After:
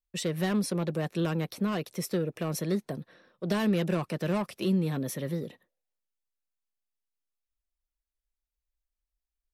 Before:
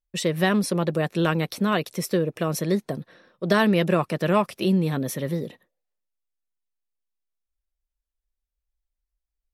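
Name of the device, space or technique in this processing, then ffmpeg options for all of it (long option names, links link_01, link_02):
one-band saturation: -filter_complex "[0:a]asettb=1/sr,asplit=3[link_01][link_02][link_03];[link_01]atrim=end=1.204[link_04];[link_02]atrim=start=1.2:end=1.96,asetpts=PTS-STARTPTS,afade=type=in:duration=0.004:curve=qsin,afade=type=out:start_time=0.756:duration=0.004:curve=qsin,equalizer=frequency=6300:width=0.37:gain=-3.5[link_05];[link_03]atrim=start=1.956[link_06];[link_04][link_05]acrossfade=duration=0.004:curve1=hsin:curve2=qsin[link_07];[link_07][link_06]acrossfade=duration=0.004:curve1=qsin:curve2=hsin,acrossover=split=370|4200[link_08][link_09][link_10];[link_09]asoftclip=type=tanh:threshold=-25.5dB[link_11];[link_08][link_11][link_10]amix=inputs=3:normalize=0,volume=-5dB"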